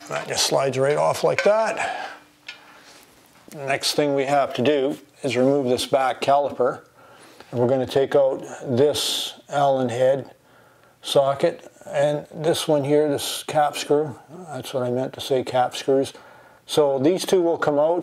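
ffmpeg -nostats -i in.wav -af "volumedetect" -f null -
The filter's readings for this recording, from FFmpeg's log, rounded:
mean_volume: -22.1 dB
max_volume: -6.3 dB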